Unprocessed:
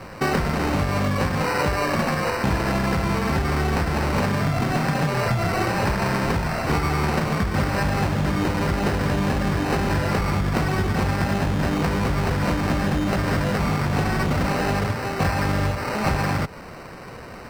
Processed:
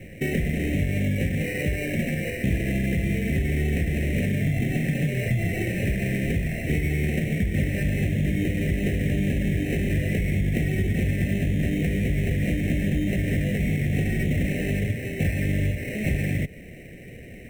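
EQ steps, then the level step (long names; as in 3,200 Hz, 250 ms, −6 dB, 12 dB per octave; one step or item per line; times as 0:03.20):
Chebyshev band-stop filter 750–1,900 Hz, order 3
phaser with its sweep stopped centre 2,000 Hz, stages 4
0.0 dB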